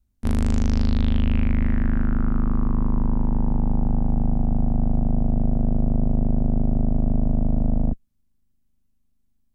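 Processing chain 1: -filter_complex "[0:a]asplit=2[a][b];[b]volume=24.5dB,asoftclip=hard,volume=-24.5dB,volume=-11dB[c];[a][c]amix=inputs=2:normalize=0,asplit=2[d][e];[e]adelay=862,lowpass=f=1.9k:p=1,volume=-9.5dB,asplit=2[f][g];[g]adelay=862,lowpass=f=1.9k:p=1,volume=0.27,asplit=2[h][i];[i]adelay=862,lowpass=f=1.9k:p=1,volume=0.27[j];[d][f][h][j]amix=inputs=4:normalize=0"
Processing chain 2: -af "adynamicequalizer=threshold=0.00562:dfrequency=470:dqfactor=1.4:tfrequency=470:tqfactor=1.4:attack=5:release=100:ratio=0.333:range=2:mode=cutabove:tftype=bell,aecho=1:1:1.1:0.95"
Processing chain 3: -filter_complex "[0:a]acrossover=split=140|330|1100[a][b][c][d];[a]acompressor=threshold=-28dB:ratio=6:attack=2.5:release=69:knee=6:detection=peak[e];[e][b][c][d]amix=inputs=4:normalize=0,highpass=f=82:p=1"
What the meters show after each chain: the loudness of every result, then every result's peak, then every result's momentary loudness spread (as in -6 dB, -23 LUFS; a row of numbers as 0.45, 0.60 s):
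-23.5, -19.5, -29.0 LUFS; -8.0, -4.0, -13.0 dBFS; 7, 2, 1 LU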